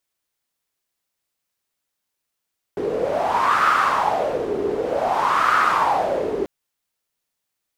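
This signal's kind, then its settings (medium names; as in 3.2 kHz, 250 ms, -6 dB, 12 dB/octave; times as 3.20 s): wind-like swept noise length 3.69 s, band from 400 Hz, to 1.3 kHz, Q 6.2, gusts 2, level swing 6 dB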